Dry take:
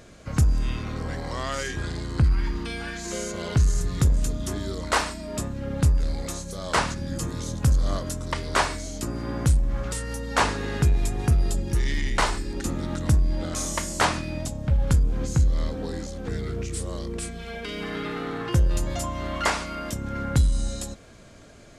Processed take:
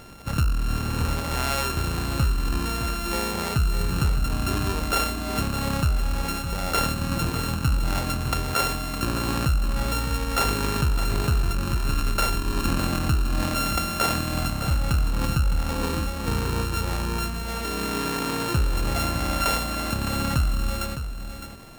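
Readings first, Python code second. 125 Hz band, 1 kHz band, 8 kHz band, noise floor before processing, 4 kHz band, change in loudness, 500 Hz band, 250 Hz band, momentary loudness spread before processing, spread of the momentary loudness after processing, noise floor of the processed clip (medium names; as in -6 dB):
-0.5 dB, +2.5 dB, +1.0 dB, -47 dBFS, +4.5 dB, +1.0 dB, 0.0 dB, +2.0 dB, 9 LU, 4 LU, -30 dBFS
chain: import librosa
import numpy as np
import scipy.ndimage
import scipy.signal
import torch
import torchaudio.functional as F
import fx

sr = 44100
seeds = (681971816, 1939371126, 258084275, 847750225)

p1 = np.r_[np.sort(x[:len(x) // 32 * 32].reshape(-1, 32), axis=1).ravel(), x[len(x) // 32 * 32:]]
p2 = fx.over_compress(p1, sr, threshold_db=-27.0, ratio=-1.0)
p3 = p1 + F.gain(torch.from_numpy(p2), 0.5).numpy()
p4 = p3 + 10.0 ** (-9.5 / 20.0) * np.pad(p3, (int(610 * sr / 1000.0), 0))[:len(p3)]
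y = F.gain(torch.from_numpy(p4), -4.0).numpy()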